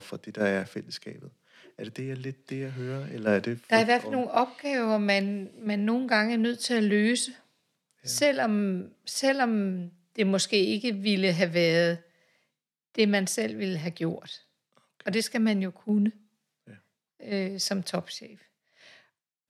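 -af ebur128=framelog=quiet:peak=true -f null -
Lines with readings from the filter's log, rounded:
Integrated loudness:
  I:         -27.3 LUFS
  Threshold: -38.4 LUFS
Loudness range:
  LRA:         6.2 LU
  Threshold: -48.0 LUFS
  LRA low:   -32.2 LUFS
  LRA high:  -26.1 LUFS
True peak:
  Peak:       -7.3 dBFS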